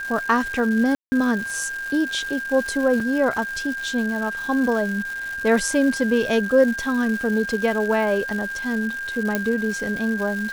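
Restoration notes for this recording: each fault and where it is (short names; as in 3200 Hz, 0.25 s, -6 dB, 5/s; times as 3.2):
crackle 450/s -29 dBFS
tone 1600 Hz -27 dBFS
0.95–1.12 gap 0.17 s
3 gap 3.4 ms
9.35 pop -7 dBFS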